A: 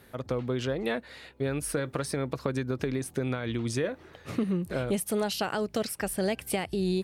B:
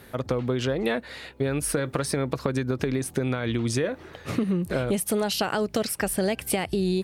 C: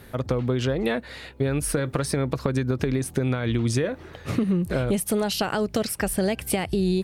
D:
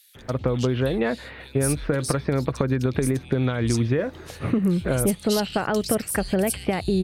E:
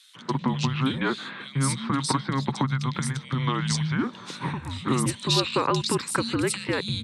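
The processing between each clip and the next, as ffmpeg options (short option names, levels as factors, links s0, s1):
-af "acompressor=threshold=0.0355:ratio=3,volume=2.24"
-af "lowshelf=f=130:g=8"
-filter_complex "[0:a]acrossover=split=3000[s0][s1];[s0]adelay=150[s2];[s2][s1]amix=inputs=2:normalize=0,volume=1.19"
-af "afreqshift=-270,highpass=f=150:w=0.5412,highpass=f=150:w=1.3066,equalizer=f=190:t=q:w=4:g=-7,equalizer=f=660:t=q:w=4:g=-7,equalizer=f=1000:t=q:w=4:g=6,equalizer=f=3800:t=q:w=4:g=7,lowpass=f=8600:w=0.5412,lowpass=f=8600:w=1.3066,volume=1.33"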